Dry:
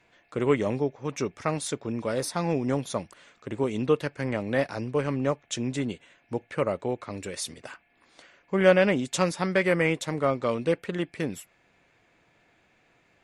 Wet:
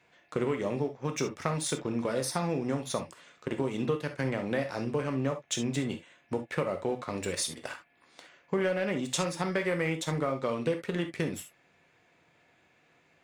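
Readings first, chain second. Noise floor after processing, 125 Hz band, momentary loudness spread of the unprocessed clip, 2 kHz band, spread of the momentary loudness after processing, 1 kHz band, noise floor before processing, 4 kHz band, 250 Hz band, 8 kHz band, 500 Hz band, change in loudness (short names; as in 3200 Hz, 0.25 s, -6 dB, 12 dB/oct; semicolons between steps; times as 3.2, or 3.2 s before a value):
-66 dBFS, -3.0 dB, 13 LU, -5.5 dB, 7 LU, -4.0 dB, -65 dBFS, -1.0 dB, -3.5 dB, +0.5 dB, -5.5 dB, -4.5 dB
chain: HPF 100 Hz 6 dB/oct; sample leveller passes 1; compressor 5:1, threshold -28 dBFS, peak gain reduction 15 dB; non-linear reverb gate 90 ms flat, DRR 6 dB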